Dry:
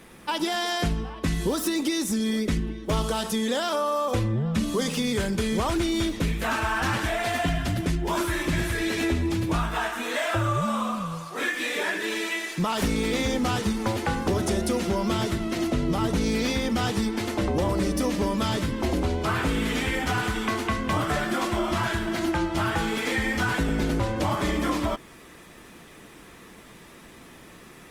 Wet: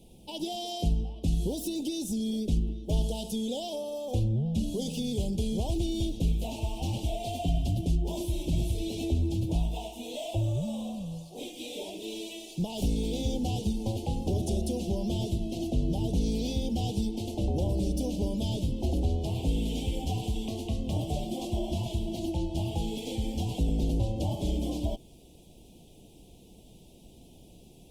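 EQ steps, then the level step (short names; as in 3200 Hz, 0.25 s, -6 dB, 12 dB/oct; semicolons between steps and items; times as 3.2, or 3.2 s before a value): elliptic band-stop 770–2900 Hz, stop band 70 dB; low shelf 130 Hz +11.5 dB; -7.5 dB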